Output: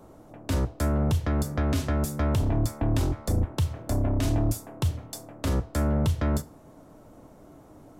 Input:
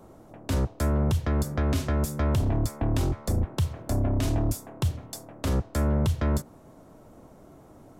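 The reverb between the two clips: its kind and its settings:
feedback delay network reverb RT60 0.3 s, low-frequency decay 0.95×, high-frequency decay 0.95×, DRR 12.5 dB

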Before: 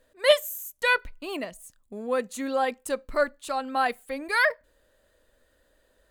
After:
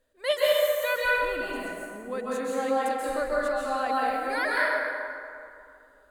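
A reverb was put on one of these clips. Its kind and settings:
dense smooth reverb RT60 2.5 s, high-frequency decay 0.5×, pre-delay 120 ms, DRR −6.5 dB
level −8 dB

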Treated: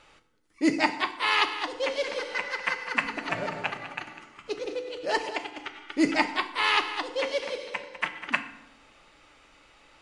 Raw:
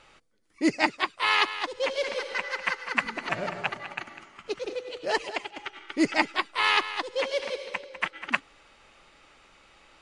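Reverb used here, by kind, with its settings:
feedback delay network reverb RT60 0.81 s, low-frequency decay 1.4×, high-frequency decay 0.75×, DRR 7.5 dB
level −1 dB

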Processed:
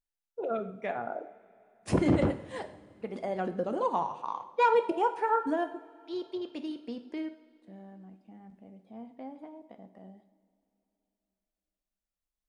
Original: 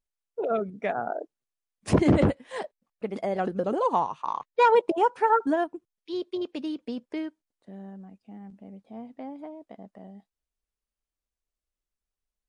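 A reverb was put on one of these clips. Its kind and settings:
coupled-rooms reverb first 0.64 s, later 3.3 s, from −18 dB, DRR 7.5 dB
level −5.5 dB

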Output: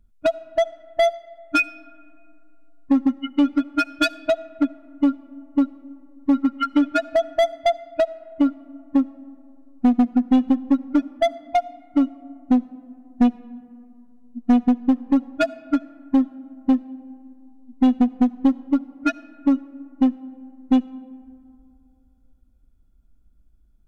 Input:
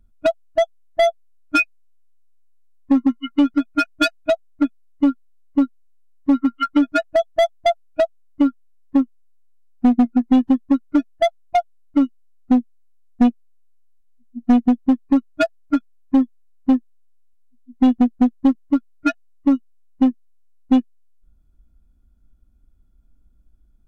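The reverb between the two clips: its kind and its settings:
comb and all-pass reverb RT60 2.6 s, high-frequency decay 0.35×, pre-delay 30 ms, DRR 19.5 dB
level −2 dB

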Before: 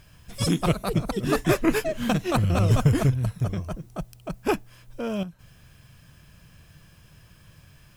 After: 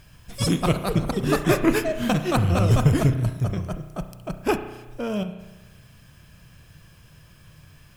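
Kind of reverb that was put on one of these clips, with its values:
spring reverb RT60 1.1 s, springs 33 ms, chirp 40 ms, DRR 9 dB
level +1.5 dB

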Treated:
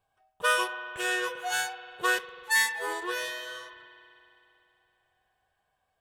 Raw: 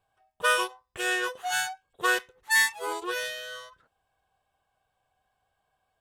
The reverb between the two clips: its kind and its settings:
spring reverb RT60 3.1 s, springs 47 ms, chirp 65 ms, DRR 10.5 dB
level −1.5 dB

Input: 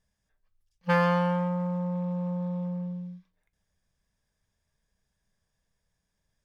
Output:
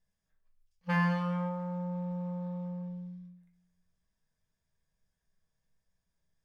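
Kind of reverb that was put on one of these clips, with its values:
rectangular room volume 81 cubic metres, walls mixed, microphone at 0.63 metres
level −8 dB

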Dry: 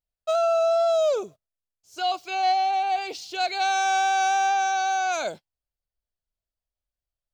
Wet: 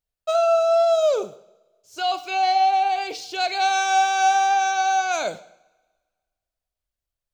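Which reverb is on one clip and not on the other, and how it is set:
coupled-rooms reverb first 0.64 s, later 1.6 s, from −20 dB, DRR 10.5 dB
level +2.5 dB

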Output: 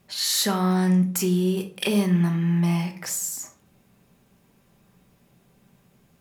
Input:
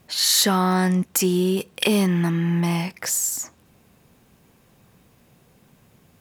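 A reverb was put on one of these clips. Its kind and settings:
rectangular room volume 470 cubic metres, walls furnished, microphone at 1.2 metres
level −6 dB

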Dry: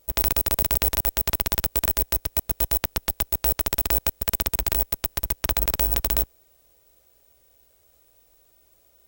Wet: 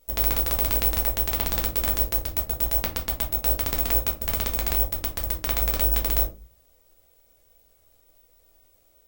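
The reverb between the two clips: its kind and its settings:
rectangular room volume 130 cubic metres, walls furnished, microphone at 1.6 metres
level −5 dB

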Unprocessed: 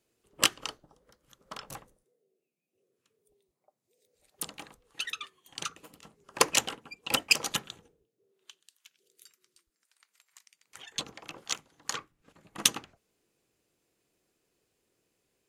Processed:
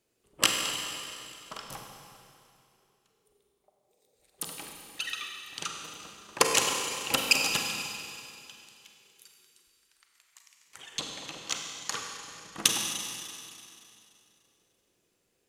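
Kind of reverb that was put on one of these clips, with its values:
four-comb reverb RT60 2.6 s, combs from 33 ms, DRR 1.5 dB

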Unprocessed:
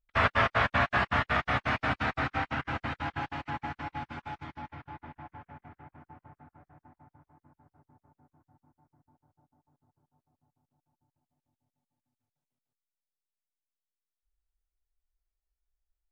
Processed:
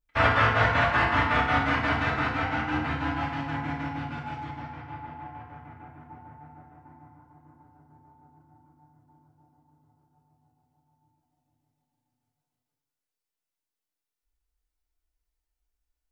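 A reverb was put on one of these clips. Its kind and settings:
feedback delay network reverb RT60 1 s, low-frequency decay 1×, high-frequency decay 0.7×, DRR −4 dB
level −1 dB

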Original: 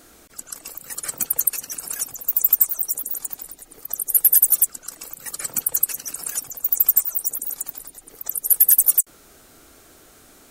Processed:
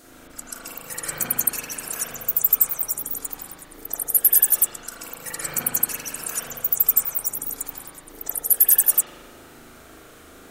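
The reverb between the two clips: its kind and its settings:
spring reverb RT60 1.4 s, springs 38 ms, chirp 50 ms, DRR −6.5 dB
level −1.5 dB

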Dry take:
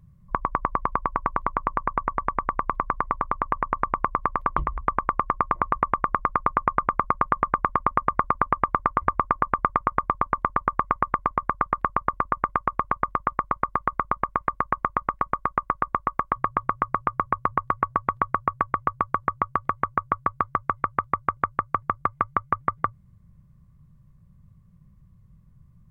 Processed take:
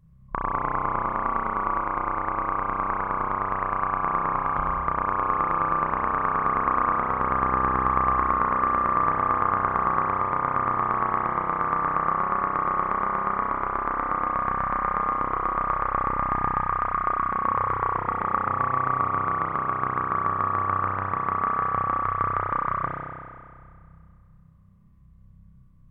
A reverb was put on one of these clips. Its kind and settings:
spring reverb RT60 2.1 s, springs 31 ms, chirp 75 ms, DRR −5 dB
level −5 dB

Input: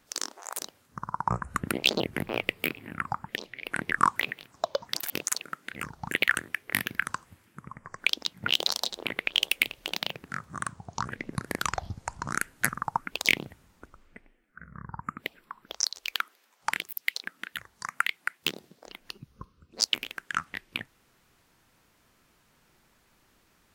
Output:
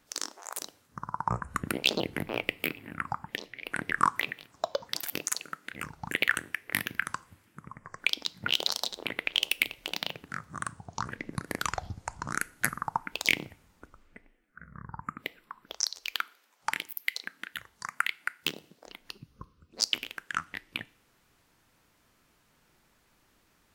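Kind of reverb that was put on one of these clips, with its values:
feedback delay network reverb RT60 0.47 s, high-frequency decay 1×, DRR 18 dB
level −2 dB

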